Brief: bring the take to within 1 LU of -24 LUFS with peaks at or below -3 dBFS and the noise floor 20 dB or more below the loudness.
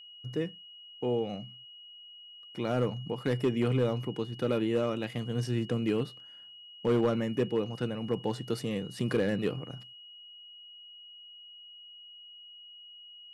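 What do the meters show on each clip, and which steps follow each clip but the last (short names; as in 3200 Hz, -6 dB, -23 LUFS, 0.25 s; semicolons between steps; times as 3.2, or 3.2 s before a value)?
clipped 0.5%; flat tops at -20.0 dBFS; steady tone 2900 Hz; tone level -48 dBFS; loudness -31.5 LUFS; peak -20.0 dBFS; loudness target -24.0 LUFS
-> clip repair -20 dBFS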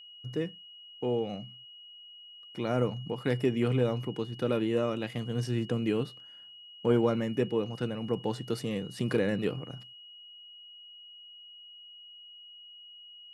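clipped 0.0%; steady tone 2900 Hz; tone level -48 dBFS
-> notch 2900 Hz, Q 30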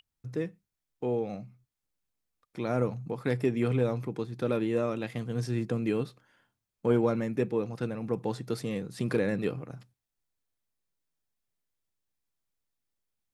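steady tone none; loudness -31.5 LUFS; peak -13.5 dBFS; loudness target -24.0 LUFS
-> gain +7.5 dB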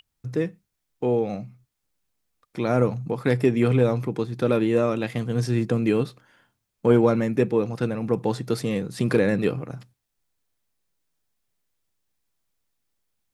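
loudness -24.0 LUFS; peak -6.0 dBFS; noise floor -79 dBFS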